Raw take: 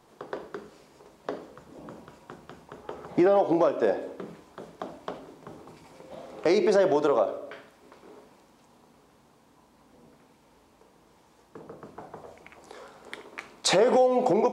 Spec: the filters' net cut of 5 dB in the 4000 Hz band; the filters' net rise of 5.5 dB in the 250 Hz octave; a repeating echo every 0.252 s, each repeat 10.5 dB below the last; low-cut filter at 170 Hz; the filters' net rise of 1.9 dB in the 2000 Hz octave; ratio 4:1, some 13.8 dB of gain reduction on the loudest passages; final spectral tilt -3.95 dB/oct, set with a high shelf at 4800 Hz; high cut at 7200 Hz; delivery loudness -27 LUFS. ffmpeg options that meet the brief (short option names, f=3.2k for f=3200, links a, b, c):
-af "highpass=170,lowpass=7.2k,equalizer=f=250:t=o:g=9,equalizer=f=2k:t=o:g=4,equalizer=f=4k:t=o:g=-3,highshelf=f=4.8k:g=-7,acompressor=threshold=-30dB:ratio=4,aecho=1:1:252|504|756:0.299|0.0896|0.0269,volume=9dB"